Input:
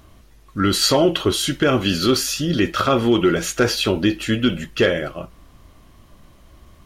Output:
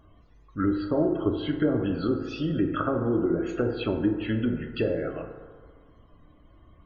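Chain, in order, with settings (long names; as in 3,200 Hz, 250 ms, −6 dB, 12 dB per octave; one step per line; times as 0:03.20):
treble cut that deepens with the level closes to 600 Hz, closed at −13 dBFS
spectral peaks only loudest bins 64
feedback delay network reverb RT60 1.7 s, low-frequency decay 0.75×, high-frequency decay 0.35×, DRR 4 dB
level −8 dB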